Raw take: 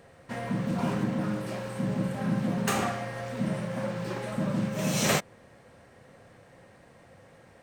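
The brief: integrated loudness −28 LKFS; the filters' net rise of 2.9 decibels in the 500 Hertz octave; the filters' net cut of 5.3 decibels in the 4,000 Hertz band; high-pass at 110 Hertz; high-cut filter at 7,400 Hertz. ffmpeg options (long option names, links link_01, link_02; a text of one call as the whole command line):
ffmpeg -i in.wav -af "highpass=110,lowpass=7400,equalizer=frequency=500:width_type=o:gain=3.5,equalizer=frequency=4000:width_type=o:gain=-7,volume=2dB" out.wav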